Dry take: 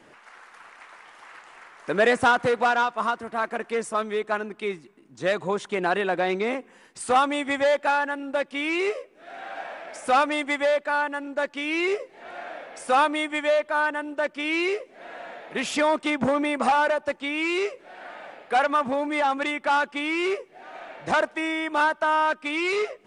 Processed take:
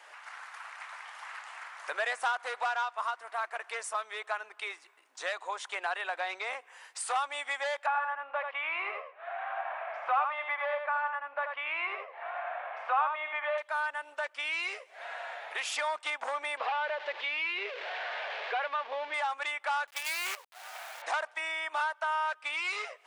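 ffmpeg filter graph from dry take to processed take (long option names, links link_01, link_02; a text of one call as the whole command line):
ffmpeg -i in.wav -filter_complex "[0:a]asettb=1/sr,asplit=3[link_01][link_02][link_03];[link_01]atrim=end=7.864[link_04];[link_02]atrim=start=7.86:end=13.58,asetpts=PTS-STARTPTS,afade=type=in:duration=0.004:curve=qsin,afade=type=out:start_time=5.716:duration=0.004:curve=qsin,highpass=230,equalizer=frequency=290:width_type=q:width=4:gain=-4,equalizer=frequency=700:width_type=q:width=4:gain=6,equalizer=frequency=1100:width_type=q:width=4:gain=9,lowpass=frequency=2700:width=0.5412,lowpass=frequency=2700:width=1.3066,aecho=1:1:82:0.473,atrim=end_sample=252252[link_05];[link_03]atrim=start=13.576[link_06];[link_04][link_05]acrossfade=duration=0.004:curve1=hsin:curve2=qsin[link_07];[link_07][link_06]acrossfade=duration=0.004:curve1=qsin:curve2=hsin,asettb=1/sr,asplit=3[link_08][link_09][link_10];[link_08]atrim=end=16.574[link_11];[link_09]atrim=start=16.57:end=19.14,asetpts=PTS-STARTPTS,afade=type=in:duration=0.004:curve=qsin,afade=type=out:start_time=2.566:duration=0.004:curve=qsin,aeval=exprs='val(0)+0.5*0.0376*sgn(val(0))':channel_layout=same,highpass=240,equalizer=frequency=440:width_type=q:width=4:gain=10,equalizer=frequency=810:width_type=q:width=4:gain=-5,equalizer=frequency=1300:width_type=q:width=4:gain=-6,lowpass=frequency=3600:width=0.5412,lowpass=frequency=3600:width=1.3066[link_12];[link_10]atrim=start=19.136[link_13];[link_11][link_12]acrossfade=duration=0.004:curve1=hsin:curve2=qsin[link_14];[link_14][link_13]acrossfade=duration=0.004:curve1=qsin:curve2=hsin,asettb=1/sr,asplit=3[link_15][link_16][link_17];[link_15]atrim=end=19.874[link_18];[link_16]atrim=start=19.87:end=21.02,asetpts=PTS-STARTPTS,afade=type=in:duration=0.004:curve=qsin,afade=type=out:start_time=1.146:duration=0.004:curve=qsin,lowshelf=frequency=130:width_type=q:width=1.5:gain=14,bandreject=frequency=4300:width=20,acrusher=bits=5:dc=4:mix=0:aa=0.000001[link_19];[link_17]atrim=start=21.016[link_20];[link_18][link_19]acrossfade=duration=0.004:curve1=hsin:curve2=qsin[link_21];[link_21][link_20]acrossfade=duration=0.004:curve1=qsin:curve2=hsin,highpass=frequency=720:width=0.5412,highpass=frequency=720:width=1.3066,acompressor=threshold=-41dB:ratio=2,volume=3dB" out.wav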